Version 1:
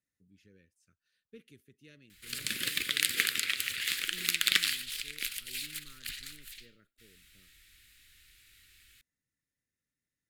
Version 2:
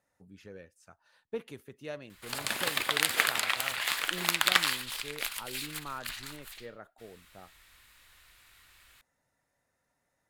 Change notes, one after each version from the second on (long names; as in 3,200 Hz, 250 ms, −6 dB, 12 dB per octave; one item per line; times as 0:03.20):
speech +9.5 dB
master: remove Butterworth band-reject 820 Hz, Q 0.53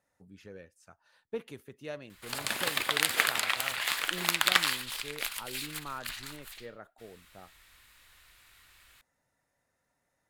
nothing changed